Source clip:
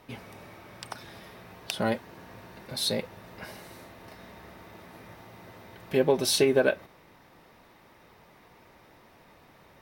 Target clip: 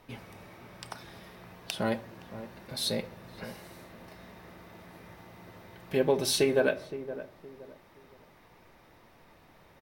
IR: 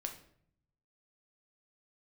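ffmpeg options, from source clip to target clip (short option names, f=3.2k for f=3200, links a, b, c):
-filter_complex "[0:a]asplit=2[a][b];[b]adelay=517,lowpass=f=840:p=1,volume=-12dB,asplit=2[c][d];[d]adelay=517,lowpass=f=840:p=1,volume=0.34,asplit=2[e][f];[f]adelay=517,lowpass=f=840:p=1,volume=0.34[g];[a][c][e][g]amix=inputs=4:normalize=0,asplit=2[h][i];[1:a]atrim=start_sample=2205,asetrate=48510,aresample=44100,lowshelf=f=65:g=11.5[j];[i][j]afir=irnorm=-1:irlink=0,volume=-2dB[k];[h][k]amix=inputs=2:normalize=0,volume=-6.5dB"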